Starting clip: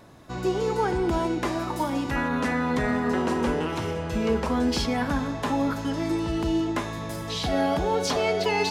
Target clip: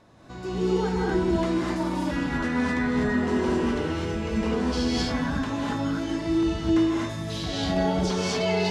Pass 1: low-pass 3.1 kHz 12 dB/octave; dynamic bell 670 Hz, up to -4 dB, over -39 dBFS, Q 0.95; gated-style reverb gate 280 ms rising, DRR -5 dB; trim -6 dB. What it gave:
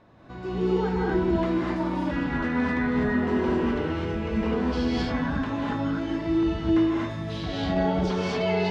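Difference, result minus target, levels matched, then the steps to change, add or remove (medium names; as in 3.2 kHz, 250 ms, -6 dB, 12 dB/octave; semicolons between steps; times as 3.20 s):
8 kHz band -12.0 dB
change: low-pass 8.1 kHz 12 dB/octave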